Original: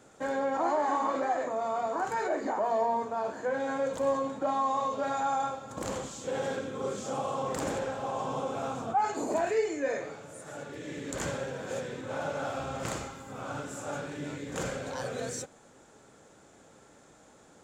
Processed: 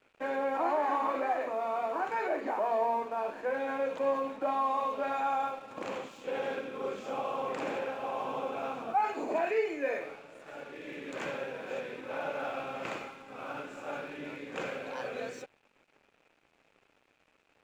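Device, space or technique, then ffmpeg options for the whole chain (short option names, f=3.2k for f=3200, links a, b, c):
pocket radio on a weak battery: -af "highpass=260,lowpass=3.2k,aeval=exprs='sgn(val(0))*max(abs(val(0))-0.00141,0)':c=same,equalizer=f=2.5k:t=o:w=0.35:g=9.5,volume=-1dB"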